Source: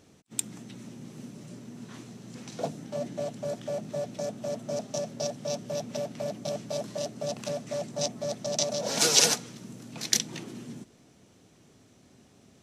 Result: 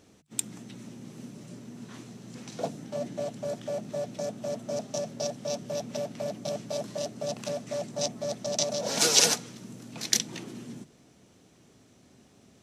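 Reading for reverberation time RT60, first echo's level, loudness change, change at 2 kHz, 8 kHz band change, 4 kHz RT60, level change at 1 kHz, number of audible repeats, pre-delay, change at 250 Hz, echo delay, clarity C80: no reverb audible, no echo audible, 0.0 dB, 0.0 dB, 0.0 dB, no reverb audible, 0.0 dB, no echo audible, no reverb audible, 0.0 dB, no echo audible, no reverb audible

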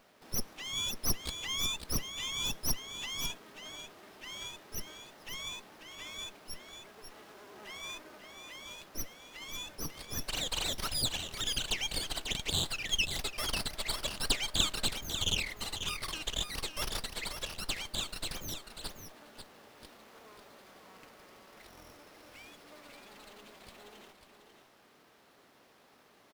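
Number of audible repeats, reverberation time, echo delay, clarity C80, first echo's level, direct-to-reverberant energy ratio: 1, no reverb audible, 543 ms, no reverb audible, −8.0 dB, no reverb audible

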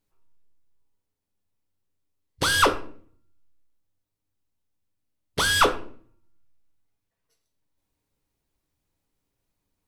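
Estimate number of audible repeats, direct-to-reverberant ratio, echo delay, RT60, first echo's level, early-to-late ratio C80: no echo audible, 6.5 dB, no echo audible, 0.50 s, no echo audible, 19.0 dB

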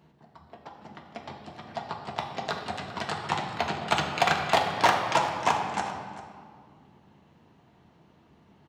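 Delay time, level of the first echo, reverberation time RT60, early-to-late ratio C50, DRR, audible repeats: 394 ms, −15.5 dB, 2.1 s, 4.5 dB, 1.5 dB, 1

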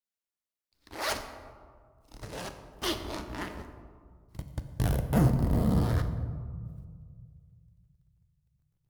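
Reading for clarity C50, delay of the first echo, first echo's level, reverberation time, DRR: 9.5 dB, no echo audible, no echo audible, 1.9 s, 7.5 dB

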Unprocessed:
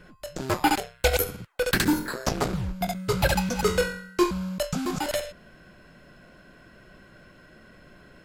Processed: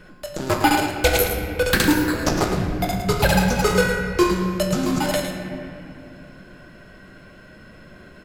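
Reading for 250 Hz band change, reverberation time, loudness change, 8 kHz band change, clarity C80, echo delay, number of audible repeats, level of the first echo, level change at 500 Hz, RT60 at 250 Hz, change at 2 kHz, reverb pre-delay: +6.5 dB, 2.6 s, +6.0 dB, +5.0 dB, 4.0 dB, 108 ms, 1, −8.5 dB, +5.5 dB, 3.9 s, +7.0 dB, 3 ms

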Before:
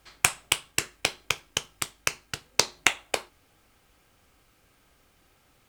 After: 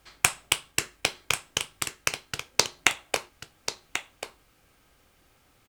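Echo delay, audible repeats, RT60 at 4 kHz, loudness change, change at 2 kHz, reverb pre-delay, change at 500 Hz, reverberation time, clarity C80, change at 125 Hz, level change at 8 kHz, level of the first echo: 1,088 ms, 1, no reverb audible, −0.5 dB, +0.5 dB, no reverb audible, +0.5 dB, no reverb audible, no reverb audible, +0.5 dB, +0.5 dB, −9.5 dB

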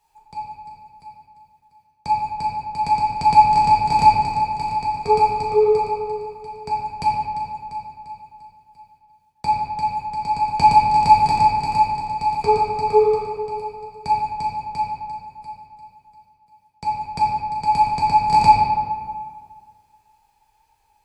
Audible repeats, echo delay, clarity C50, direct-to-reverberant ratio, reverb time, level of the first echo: no echo audible, no echo audible, −0.5 dB, −4.5 dB, 1.9 s, no echo audible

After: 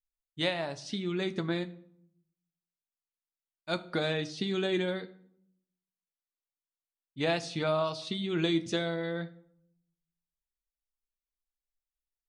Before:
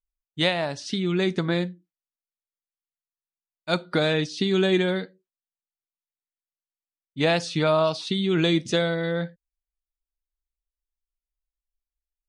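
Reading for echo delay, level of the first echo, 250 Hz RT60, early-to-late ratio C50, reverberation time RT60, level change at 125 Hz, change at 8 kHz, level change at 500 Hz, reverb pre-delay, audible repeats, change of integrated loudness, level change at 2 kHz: no echo audible, no echo audible, 0.95 s, 18.0 dB, 0.70 s, −9.0 dB, −7.5 dB, −8.0 dB, 9 ms, no echo audible, −8.0 dB, −8.0 dB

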